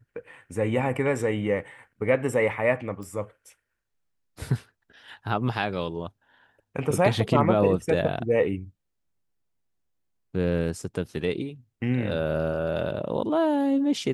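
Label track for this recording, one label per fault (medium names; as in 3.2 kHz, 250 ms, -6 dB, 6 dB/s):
3.030000	3.030000	pop -28 dBFS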